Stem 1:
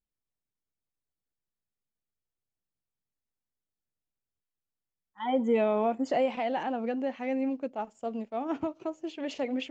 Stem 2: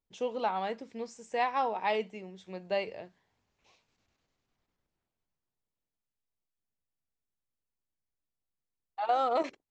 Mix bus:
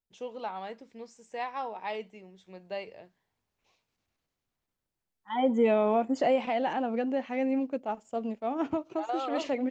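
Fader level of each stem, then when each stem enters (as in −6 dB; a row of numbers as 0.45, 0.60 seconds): +1.5, −5.5 decibels; 0.10, 0.00 seconds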